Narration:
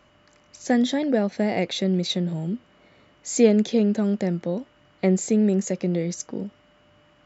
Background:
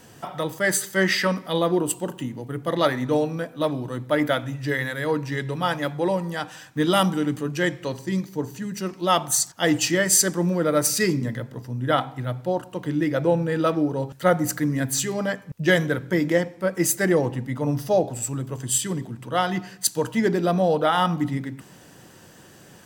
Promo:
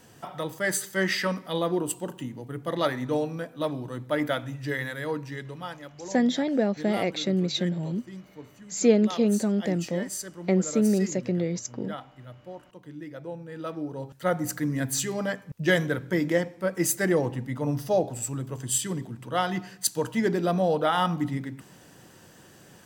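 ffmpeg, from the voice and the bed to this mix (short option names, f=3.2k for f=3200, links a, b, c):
-filter_complex "[0:a]adelay=5450,volume=-2.5dB[a];[1:a]volume=8.5dB,afade=t=out:st=4.9:d=0.94:silence=0.251189,afade=t=in:st=13.45:d=1.37:silence=0.211349[b];[a][b]amix=inputs=2:normalize=0"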